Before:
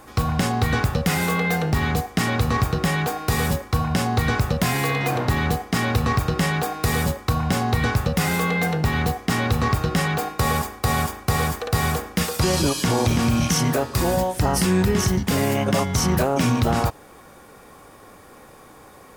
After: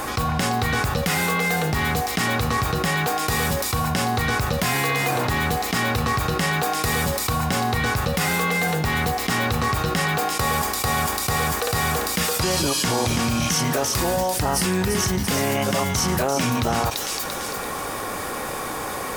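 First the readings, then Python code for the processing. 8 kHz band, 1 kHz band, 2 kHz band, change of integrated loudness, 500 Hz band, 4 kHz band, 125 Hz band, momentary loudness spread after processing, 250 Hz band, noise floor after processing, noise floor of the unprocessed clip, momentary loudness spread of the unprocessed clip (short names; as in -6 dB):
+4.0 dB, +2.0 dB, +2.5 dB, -0.5 dB, -0.5 dB, +3.0 dB, -3.5 dB, 4 LU, -3.0 dB, -29 dBFS, -47 dBFS, 3 LU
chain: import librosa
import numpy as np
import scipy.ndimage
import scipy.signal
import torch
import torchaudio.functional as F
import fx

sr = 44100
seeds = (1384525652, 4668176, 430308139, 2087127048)

p1 = fx.low_shelf(x, sr, hz=440.0, db=-6.5)
p2 = p1 + fx.echo_wet_highpass(p1, sr, ms=341, feedback_pct=31, hz=4000.0, wet_db=-6.5, dry=0)
y = fx.env_flatten(p2, sr, amount_pct=70)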